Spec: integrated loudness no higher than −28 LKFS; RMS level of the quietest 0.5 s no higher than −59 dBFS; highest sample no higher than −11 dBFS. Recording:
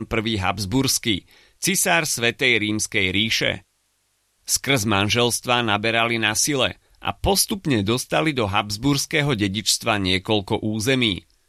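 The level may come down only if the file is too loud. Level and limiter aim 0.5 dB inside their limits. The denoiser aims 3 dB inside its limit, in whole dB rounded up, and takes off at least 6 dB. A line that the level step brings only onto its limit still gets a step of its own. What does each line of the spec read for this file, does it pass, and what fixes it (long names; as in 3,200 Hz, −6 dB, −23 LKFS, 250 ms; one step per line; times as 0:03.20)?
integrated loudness −20.5 LKFS: out of spec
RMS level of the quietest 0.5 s −68 dBFS: in spec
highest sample −4.0 dBFS: out of spec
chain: level −8 dB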